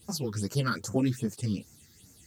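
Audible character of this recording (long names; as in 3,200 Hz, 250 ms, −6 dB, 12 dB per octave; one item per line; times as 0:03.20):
phaser sweep stages 6, 2.5 Hz, lowest notch 670–3,400 Hz
a quantiser's noise floor 12 bits, dither triangular
a shimmering, thickened sound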